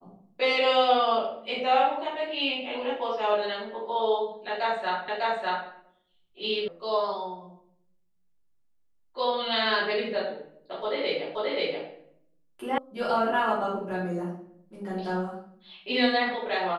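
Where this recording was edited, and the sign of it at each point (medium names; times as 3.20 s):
5.08 s: repeat of the last 0.6 s
6.68 s: sound stops dead
11.35 s: repeat of the last 0.53 s
12.78 s: sound stops dead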